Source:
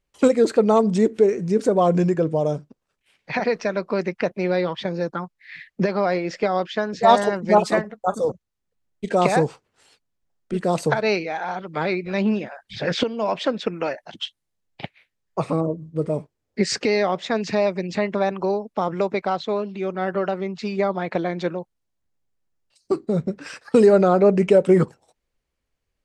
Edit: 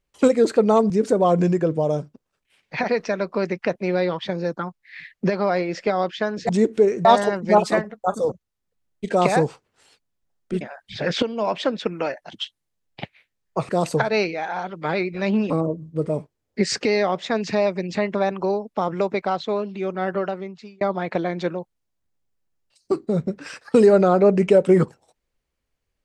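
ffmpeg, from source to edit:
-filter_complex "[0:a]asplit=8[a][b][c][d][e][f][g][h];[a]atrim=end=0.902[i];[b]atrim=start=1.458:end=7.052[j];[c]atrim=start=0.898:end=1.462[k];[d]atrim=start=7.048:end=10.612[l];[e]atrim=start=12.418:end=15.502[m];[f]atrim=start=10.608:end=12.422[n];[g]atrim=start=15.498:end=20.81,asetpts=PTS-STARTPTS,afade=t=out:st=4.632:d=0.68[o];[h]atrim=start=20.81,asetpts=PTS-STARTPTS,afade=t=in:d=0.004:c=hsin[p];[i][j]acrossfade=d=0.004:c1=hsin:c2=hsin[q];[q][k]acrossfade=d=0.004:c1=hsin:c2=hsin[r];[r][l]acrossfade=d=0.004:c1=hsin:c2=hsin[s];[s][m]acrossfade=d=0.004:c1=hsin:c2=hsin[t];[t][n]acrossfade=d=0.004:c1=hsin:c2=hsin[u];[o][p]concat=n=2:v=0:a=1[v];[u][v]acrossfade=d=0.004:c1=hsin:c2=hsin"

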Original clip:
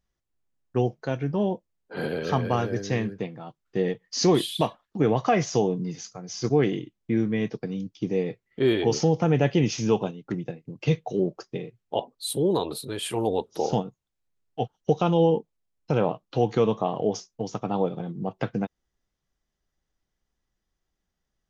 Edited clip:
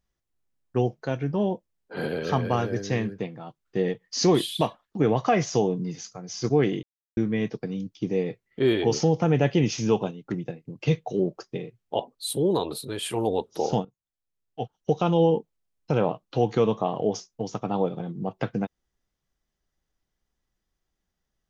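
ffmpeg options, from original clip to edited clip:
-filter_complex "[0:a]asplit=4[a][b][c][d];[a]atrim=end=6.83,asetpts=PTS-STARTPTS,afade=t=out:st=6.826:d=0.004:c=hsin[e];[b]atrim=start=6.83:end=7.17,asetpts=PTS-STARTPTS,volume=0[f];[c]atrim=start=7.17:end=13.85,asetpts=PTS-STARTPTS,afade=t=in:d=0.004:c=hsin,afade=t=out:st=6.676:d=0.004:c=hsin:silence=0.149624[g];[d]atrim=start=13.85,asetpts=PTS-STARTPTS,afade=t=in:d=1.29:silence=0.149624[h];[e][f][g][h]concat=n=4:v=0:a=1"

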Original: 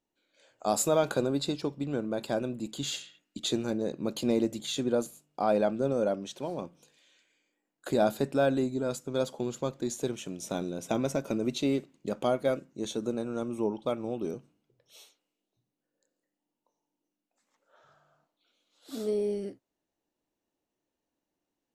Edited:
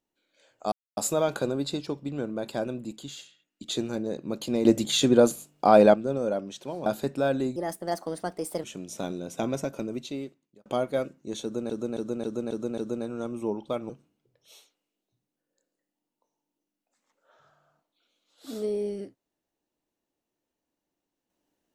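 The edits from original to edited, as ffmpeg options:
-filter_complex "[0:a]asplit=16[a][b][c][d][e][f][g][h][i][j][k][l][m][n][o][p];[a]atrim=end=0.72,asetpts=PTS-STARTPTS,afade=t=out:st=0.716:d=0.004:c=hsin,apad=pad_dur=0.25[q];[b]atrim=start=0.72:end=2.89,asetpts=PTS-STARTPTS,afade=t=in:d=0.004:c=hsin,afade=t=out:st=1.87:d=0.3:silence=0.375837[r];[c]atrim=start=2.89:end=3.2,asetpts=PTS-STARTPTS,volume=-8.5dB[s];[d]atrim=start=3.2:end=4.402,asetpts=PTS-STARTPTS,afade=t=in:d=0.3:silence=0.375837[t];[e]atrim=start=4.398:end=5.692,asetpts=PTS-STARTPTS,volume=9.5dB[u];[f]atrim=start=5.688:end=6.612[v];[g]atrim=start=8.028:end=8.734[w];[h]atrim=start=8.73:end=10.15,asetpts=PTS-STARTPTS,asetrate=58212,aresample=44100[x];[i]atrim=start=10.146:end=12.17,asetpts=PTS-STARTPTS,afade=t=out:st=0.924:d=1.1[y];[j]atrim=start=12.17:end=13.212,asetpts=PTS-STARTPTS,afade=t=in:d=0.004:c=hsin[z];[k]atrim=start=12.938:end=13.212[aa];[l]atrim=start=12.938:end=13.212[ab];[m]atrim=start=12.938:end=13.212[ac];[n]atrim=start=12.938:end=13.212[ad];[o]atrim=start=12.938:end=14.062[ae];[p]atrim=start=14.338[af];[q][r][s][t]concat=n=4:v=0:a=1[ag];[ag][u]acrossfade=d=0.004:c1=hsin:c2=hsin[ah];[ah][v]acrossfade=d=0.004:c1=hsin:c2=hsin[ai];[ai][w]acrossfade=d=0.004:c1=hsin:c2=hsin[aj];[aj][x]acrossfade=d=0.004:c1=hsin:c2=hsin[ak];[y][z]concat=n=2:v=0:a=1[al];[ak][al]acrossfade=d=0.004:c1=hsin:c2=hsin[am];[am][aa]acrossfade=d=0.004:c1=hsin:c2=hsin[an];[an][ab]acrossfade=d=0.004:c1=hsin:c2=hsin[ao];[ao][ac]acrossfade=d=0.004:c1=hsin:c2=hsin[ap];[ap][ad]acrossfade=d=0.004:c1=hsin:c2=hsin[aq];[aq][ae]acrossfade=d=0.004:c1=hsin:c2=hsin[ar];[ar][af]acrossfade=d=0.004:c1=hsin:c2=hsin"

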